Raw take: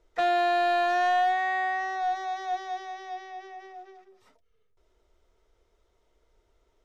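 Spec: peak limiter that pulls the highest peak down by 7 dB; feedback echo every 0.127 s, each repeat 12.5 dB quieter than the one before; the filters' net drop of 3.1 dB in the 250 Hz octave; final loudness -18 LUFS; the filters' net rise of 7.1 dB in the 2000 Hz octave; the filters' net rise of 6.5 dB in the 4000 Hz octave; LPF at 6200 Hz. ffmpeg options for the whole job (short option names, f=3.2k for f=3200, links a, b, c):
-af "lowpass=6.2k,equalizer=f=250:t=o:g=-6.5,equalizer=f=2k:t=o:g=7,equalizer=f=4k:t=o:g=6,alimiter=limit=-21dB:level=0:latency=1,aecho=1:1:127|254|381:0.237|0.0569|0.0137,volume=10dB"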